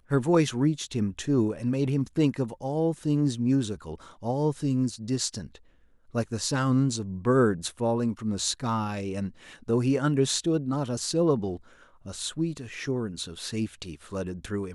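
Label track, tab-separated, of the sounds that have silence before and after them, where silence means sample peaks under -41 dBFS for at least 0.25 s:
6.140000	11.570000	sound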